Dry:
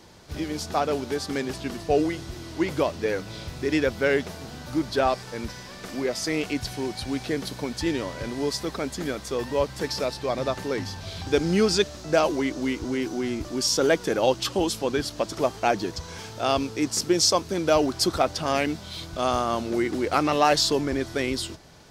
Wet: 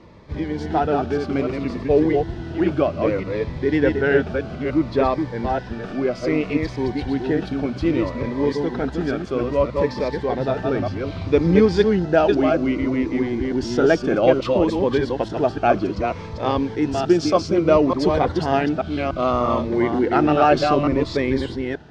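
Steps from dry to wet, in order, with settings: reverse delay 0.294 s, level -4 dB; LPF 2000 Hz 12 dB/oct; cascading phaser falling 0.62 Hz; gain +6.5 dB

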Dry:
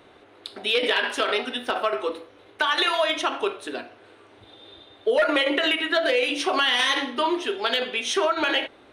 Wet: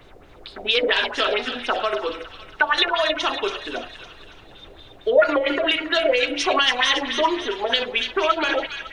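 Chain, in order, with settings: LFO low-pass sine 4.4 Hz 530–7000 Hz; added noise brown -48 dBFS; thin delay 0.279 s, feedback 49%, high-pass 1800 Hz, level -6.5 dB

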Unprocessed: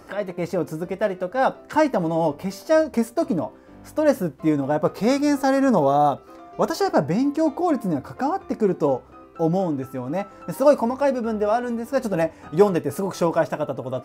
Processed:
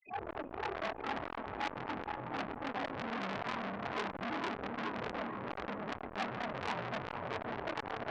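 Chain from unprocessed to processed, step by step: short-time reversal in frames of 98 ms; tilt shelf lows +4 dB, about 790 Hz; notches 60/120/180/240/300/360/420/480 Hz; compressor 5:1, threshold -27 dBFS, peak gain reduction 13.5 dB; transient shaper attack -6 dB, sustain +1 dB; loudest bins only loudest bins 8; dispersion lows, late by 0.122 s, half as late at 910 Hz; mistuned SSB -150 Hz 220–2600 Hz; diffused feedback echo 0.822 s, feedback 55%, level -3.5 dB; speed mistake 45 rpm record played at 78 rpm; core saturation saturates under 2600 Hz; gain -1 dB

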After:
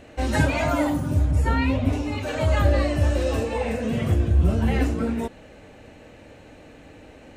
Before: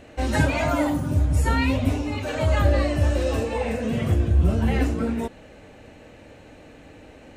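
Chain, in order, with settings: 1.31–1.93 high shelf 4300 Hz -10.5 dB

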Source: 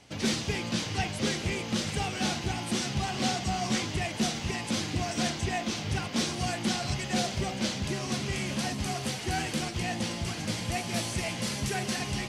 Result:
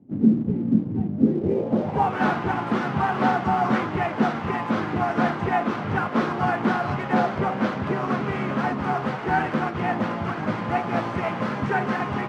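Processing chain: harmoniser +3 st -8 dB, +12 st -18 dB; low-pass sweep 250 Hz -> 1300 Hz, 1.16–2.21; HPF 140 Hz 12 dB/oct; in parallel at -7.5 dB: crossover distortion -45.5 dBFS; on the sum: gain +4.5 dB

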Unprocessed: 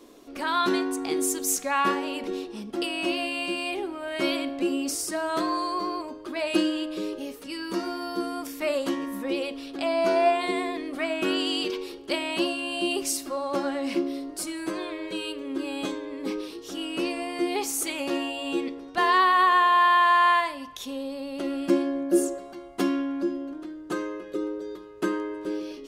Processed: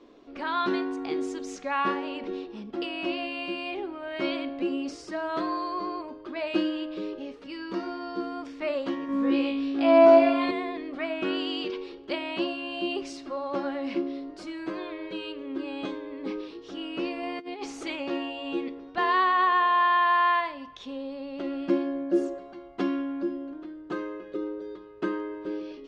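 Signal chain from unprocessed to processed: Bessel low-pass 3300 Hz, order 4; 9.07–10.51 flutter echo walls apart 3.1 m, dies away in 0.53 s; 17.23–17.96 negative-ratio compressor -31 dBFS, ratio -0.5; gain -2.5 dB

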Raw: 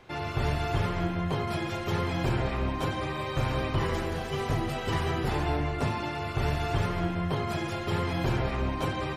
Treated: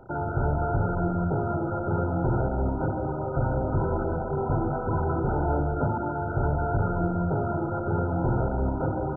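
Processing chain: dynamic EQ 1700 Hz, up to +5 dB, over -56 dBFS, Q 6.4; in parallel at +1 dB: limiter -28.5 dBFS, peak gain reduction 11.5 dB; on the sum: MP2 8 kbps 16000 Hz

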